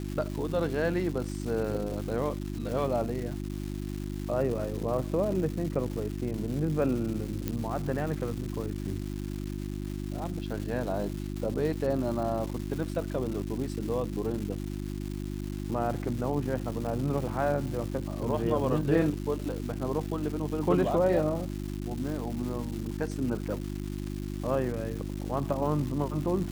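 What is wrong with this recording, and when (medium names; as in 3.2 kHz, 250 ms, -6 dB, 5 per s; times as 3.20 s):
crackle 470 per s -36 dBFS
hum 50 Hz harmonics 7 -35 dBFS
7.48 s: pop -16 dBFS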